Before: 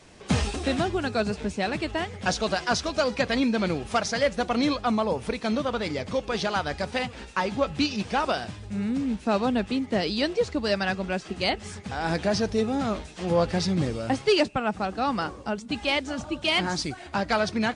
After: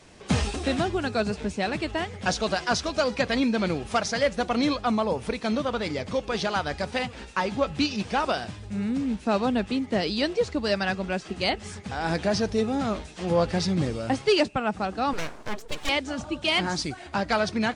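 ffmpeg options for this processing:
-filter_complex "[0:a]asettb=1/sr,asplit=3[a][b][c];[a]atrim=end=15.134[d];[b]atrim=start=15.13:end=15.89,asetpts=PTS-STARTPTS,afade=t=in:d=0.004:c=qsin,afade=t=out:st=0.756:d=0.004:c=qsin,aeval=exprs='abs(val(0))':c=same[e];[c]atrim=start=15.886[f];[d][e]acrossfade=d=0.004:c1=hsin:c2=qsin[g];[g][f]acrossfade=d=0.004:c1=qsin:c2=hsin"

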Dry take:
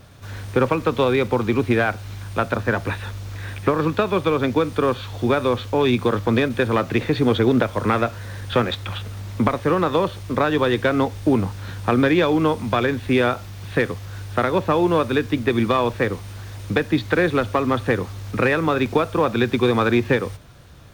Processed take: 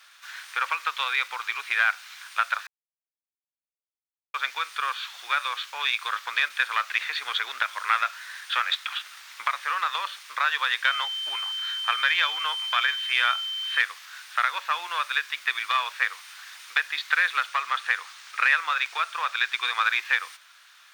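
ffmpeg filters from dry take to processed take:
-filter_complex "[0:a]asettb=1/sr,asplit=3[a][b][c];[a]atrim=end=10.854[d];[b]atrim=start=10.85:end=13.81,asetpts=PTS-STARTPTS,afade=t=in:d=0.004:c=qsin,afade=t=out:st=2.956:d=0.004:c=qsin,aeval=exprs='val(0)+0.0282*sin(2*PI*3100*n/s)':c=same[e];[c]atrim=start=13.806[f];[d][e]acrossfade=d=0.004:c1=hsin:c2=qsin[g];[g][f]acrossfade=d=0.004:c1=qsin:c2=hsin,asettb=1/sr,asplit=3[h][i][j];[h]atrim=end=17.474[k];[i]atrim=start=17.47:end=19.86,asetpts=PTS-STARTPTS,afade=t=in:d=0.004:c=qsin,afade=t=out:st=2.386:d=0.004:c=qsin,equalizer=f=13k:t=o:w=0.26:g=-12[l];[j]atrim=start=19.856[m];[k][l]acrossfade=d=0.004:c1=hsin:c2=qsin[n];[n][m]acrossfade=d=0.004:c1=qsin:c2=hsin,asplit=3[o][p][q];[o]atrim=end=2.67,asetpts=PTS-STARTPTS,afade=t=out:st=2.666:d=0.004:c=hsin[r];[p]atrim=start=2.67:end=4.34,asetpts=PTS-STARTPTS,volume=0[s];[q]atrim=start=4.34,asetpts=PTS-STARTPTS,afade=t=in:d=0.004:c=hsin[t];[r][s][t]concat=n=3:v=0:a=1,highpass=f=1.3k:w=0.5412,highpass=f=1.3k:w=1.3066,highshelf=f=7.6k:g=-6.5,volume=3.5dB"

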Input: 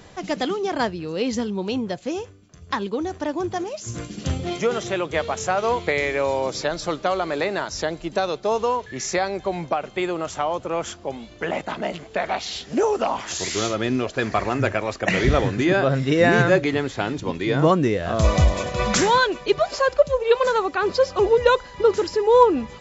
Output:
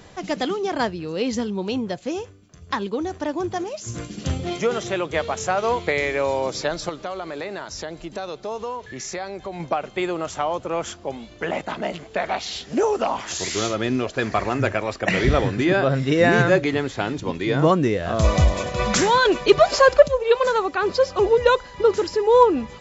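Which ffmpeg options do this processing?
-filter_complex "[0:a]asettb=1/sr,asplit=3[a][b][c];[a]atrim=end=6.894[d];[b]atrim=start=6.89:end=9.6,asetpts=PTS-STARTPTS,afade=t=in:d=0.004:c=qsin,afade=t=out:st=2.706:d=0.004:c=qsin,acompressor=threshold=-32dB:ratio=2:attack=3.2:release=140:knee=1:detection=peak[e];[c]atrim=start=9.596[f];[d][e]acrossfade=d=0.004:c1=hsin:c2=qsin[g];[g][f]acrossfade=d=0.004:c1=qsin:c2=hsin,asettb=1/sr,asplit=3[h][i][j];[h]atrim=end=14.834[k];[i]atrim=start=14.83:end=15.99,asetpts=PTS-STARTPTS,afade=t=in:d=0.004:c=qsin,afade=t=out:st=1.156:d=0.004:c=qsin,bandreject=f=6.5k:w=12[l];[j]atrim=start=15.986[m];[k][l]acrossfade=d=0.004:c1=hsin:c2=qsin[n];[n][m]acrossfade=d=0.004:c1=qsin:c2=hsin,asettb=1/sr,asplit=3[o][p][q];[o]atrim=end=19.254[r];[p]atrim=start=19.25:end=20.08,asetpts=PTS-STARTPTS,afade=t=in:d=0.004:c=qsin,afade=t=out:st=0.826:d=0.004:c=qsin,acontrast=83[s];[q]atrim=start=20.076[t];[r][s]acrossfade=d=0.004:c1=hsin:c2=qsin[u];[u][t]acrossfade=d=0.004:c1=qsin:c2=hsin"

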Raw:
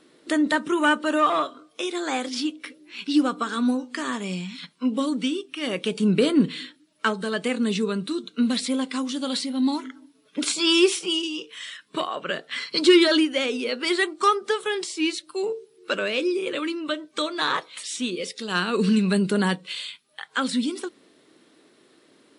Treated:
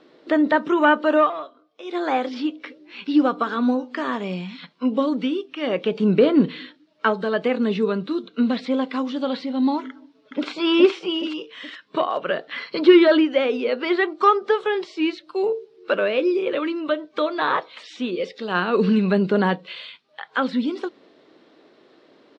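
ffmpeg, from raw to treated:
-filter_complex "[0:a]asplit=2[a][b];[b]afade=t=in:st=9.89:d=0.01,afade=t=out:st=10.49:d=0.01,aecho=0:1:420|840|1260|1680|2100:0.891251|0.3565|0.1426|0.0570401|0.022816[c];[a][c]amix=inputs=2:normalize=0,asplit=3[d][e][f];[d]atrim=end=1.32,asetpts=PTS-STARTPTS,afade=t=out:st=1.2:d=0.12:silence=0.211349[g];[e]atrim=start=1.32:end=1.84,asetpts=PTS-STARTPTS,volume=-13.5dB[h];[f]atrim=start=1.84,asetpts=PTS-STARTPTS,afade=t=in:d=0.12:silence=0.211349[i];[g][h][i]concat=n=3:v=0:a=1,lowpass=f=5.1k:w=0.5412,lowpass=f=5.1k:w=1.3066,acrossover=split=3100[j][k];[k]acompressor=threshold=-46dB:ratio=4:attack=1:release=60[l];[j][l]amix=inputs=2:normalize=0,equalizer=f=650:w=0.84:g=8"

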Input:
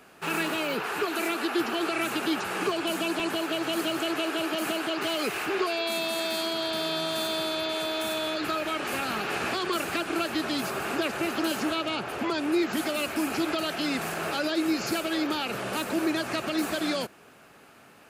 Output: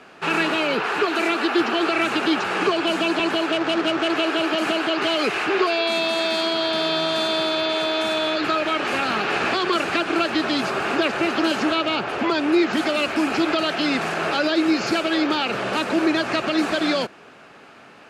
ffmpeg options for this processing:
-filter_complex "[0:a]asettb=1/sr,asplit=3[a][b][c];[a]atrim=end=3.514[d];[b]atrim=start=3.51:end=4.1,asetpts=PTS-STARTPTS,afade=t=in:d=0.004:c=qsin,afade=t=out:st=0.586:d=0.004:c=qsin,adynamicsmooth=sensitivity=7.5:basefreq=600[e];[c]atrim=start=4.096[f];[d][e]acrossfade=d=0.004:c1=hsin:c2=qsin[g];[g][f]acrossfade=d=0.004:c1=qsin:c2=hsin,lowpass=5k,lowshelf=f=120:g=-8.5,volume=8dB"

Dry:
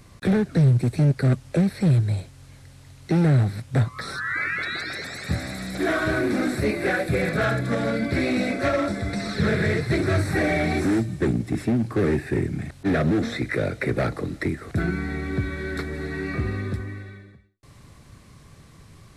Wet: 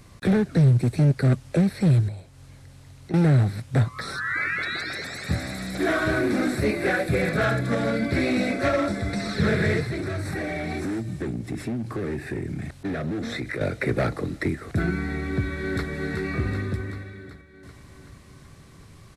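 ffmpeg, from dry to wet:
-filter_complex "[0:a]asettb=1/sr,asplit=3[a][b][c];[a]atrim=end=2.084[d];[b]atrim=start=2.08:end=3.14,asetpts=PTS-STARTPTS,afade=t=in:d=0.004:c=qsin,afade=t=out:st=1.056:d=0.004:c=qsin,acrossover=split=500|1200[e][f][g];[e]acompressor=threshold=-35dB:ratio=4[h];[f]acompressor=threshold=-50dB:ratio=4[i];[g]acompressor=threshold=-56dB:ratio=4[j];[h][i][j]amix=inputs=3:normalize=0[k];[c]atrim=start=3.136[l];[d][k]acrossfade=d=0.004:c1=hsin:c2=qsin[m];[m][l]acrossfade=d=0.004:c1=qsin:c2=hsin,asettb=1/sr,asplit=3[n][o][p];[n]atrim=end=9.834[q];[o]atrim=start=9.83:end=13.61,asetpts=PTS-STARTPTS,afade=t=in:d=0.004:c=qsin,afade=t=out:st=3.776:d=0.004:c=qsin,acompressor=threshold=-26dB:ratio=5:attack=3.2:release=140:knee=1:detection=peak[r];[p]atrim=start=13.606[s];[q][r]acrossfade=d=0.004:c1=hsin:c2=qsin[t];[t][s]acrossfade=d=0.004:c1=qsin:c2=hsin,asplit=2[u][v];[v]afade=t=in:st=15.25:d=0.01,afade=t=out:st=15.89:d=0.01,aecho=0:1:380|760|1140|1520|1900|2280|2660|3040|3420:0.473151|0.307548|0.199906|0.129939|0.0844605|0.0548993|0.0356845|0.023195|0.0150767[w];[u][w]amix=inputs=2:normalize=0"

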